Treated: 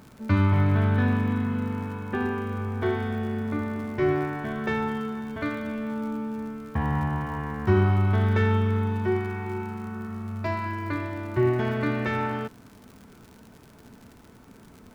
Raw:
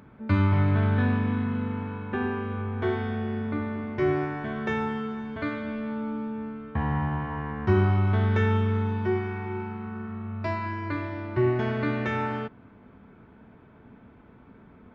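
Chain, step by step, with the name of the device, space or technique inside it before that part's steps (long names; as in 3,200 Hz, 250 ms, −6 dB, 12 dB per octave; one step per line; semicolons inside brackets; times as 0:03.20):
record under a worn stylus (stylus tracing distortion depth 0.022 ms; surface crackle 77 per second −40 dBFS; pink noise bed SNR 36 dB)
level +1 dB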